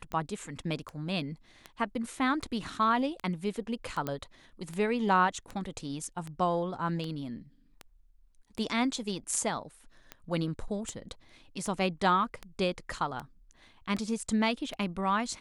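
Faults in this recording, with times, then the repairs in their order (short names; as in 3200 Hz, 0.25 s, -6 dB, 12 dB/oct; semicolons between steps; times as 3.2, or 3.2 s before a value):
tick 78 rpm -24 dBFS
4.07 pop -19 dBFS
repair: de-click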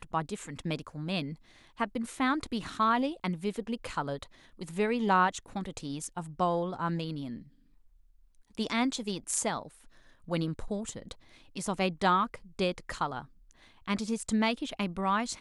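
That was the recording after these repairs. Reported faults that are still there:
none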